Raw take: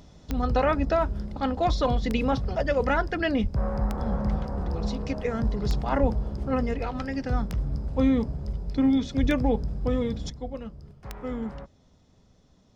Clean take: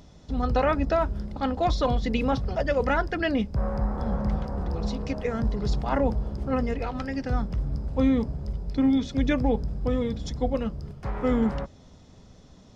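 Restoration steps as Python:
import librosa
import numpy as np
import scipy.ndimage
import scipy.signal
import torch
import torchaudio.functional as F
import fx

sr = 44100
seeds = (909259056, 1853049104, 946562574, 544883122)

y = fx.fix_declick_ar(x, sr, threshold=10.0)
y = fx.fix_deplosive(y, sr, at_s=(3.42, 6.0, 9.2))
y = fx.gain(y, sr, db=fx.steps((0.0, 0.0), (10.3, 9.0)))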